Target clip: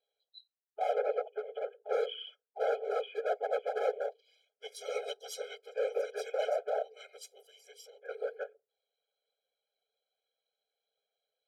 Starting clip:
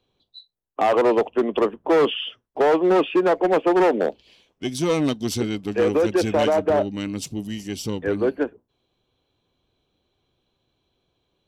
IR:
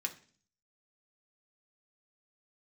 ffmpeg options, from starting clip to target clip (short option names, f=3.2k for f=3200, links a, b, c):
-filter_complex "[0:a]highpass=190,bandreject=f=50:t=h:w=6,bandreject=f=100:t=h:w=6,bandreject=f=150:t=h:w=6,bandreject=f=200:t=h:w=6,bandreject=f=250:t=h:w=6,bandreject=f=300:t=h:w=6,bandreject=f=350:t=h:w=6,bandreject=f=400:t=h:w=6,asettb=1/sr,asplit=3[a][b][c];[a]atrim=end=0.984[d];[b]atrim=start=0.98:end=1.93,asetpts=PTS-STARTPTS,afade=t=in:d=0.004:c=qsin,afade=t=out:st=0.946:d=0.004:c=qsin,acrossover=split=3000[e][f];[f]acompressor=threshold=-56dB:ratio=4:attack=1:release=60[g];[e][g]amix=inputs=2:normalize=0[h];[c]atrim=start=1.926[i];[d][h]acrossfade=d=0.004:c1=hsin:c2=qsin[j];[j][i]acrossfade=d=0.004:c1=qsin:c2=hsin,asettb=1/sr,asplit=3[k][l][m];[k]atrim=end=4.954[n];[l]atrim=start=4.95:end=5.55,asetpts=PTS-STARTPTS,afade=t=in:d=0.004:c=qsin,afade=t=out:st=0.596:d=0.004:c=qsin,aecho=1:1:4:0.97,atrim=end_sample=26460[o];[m]atrim=start=5.546[p];[n][o]acrossfade=d=0.004:c1=hsin:c2=qsin[q];[q][p]acrossfade=d=0.004:c1=qsin:c2=hsin,asettb=1/sr,asplit=3[r][s][t];[r]atrim=end=7.464[u];[s]atrim=start=7.46:end=8.09,asetpts=PTS-STARTPTS,afade=t=in:d=0.004:c=qsin,afade=t=out:st=0.626:d=0.004:c=qsin,acompressor=threshold=-33dB:ratio=6[v];[t]atrim=start=8.086[w];[u][v]acrossfade=d=0.004:c1=hsin:c2=qsin[x];[x][w]acrossfade=d=0.004:c1=qsin:c2=hsin,afftfilt=real='hypot(re,im)*cos(2*PI*random(0))':imag='hypot(re,im)*sin(2*PI*random(1))':win_size=512:overlap=0.75,afftfilt=real='re*eq(mod(floor(b*sr/1024/420),2),1)':imag='im*eq(mod(floor(b*sr/1024/420),2),1)':win_size=1024:overlap=0.75,volume=-6dB"